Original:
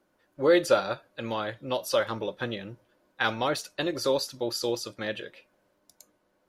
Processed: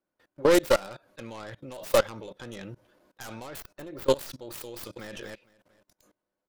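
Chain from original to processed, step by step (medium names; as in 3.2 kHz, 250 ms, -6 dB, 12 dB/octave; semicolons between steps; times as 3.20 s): tracing distortion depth 0.41 ms; 3.60–4.10 s: peaking EQ 7.5 kHz -11 dB 2.5 oct; 4.73–5.15 s: echo throw 230 ms, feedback 25%, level -12 dB; level held to a coarse grid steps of 23 dB; trim +5.5 dB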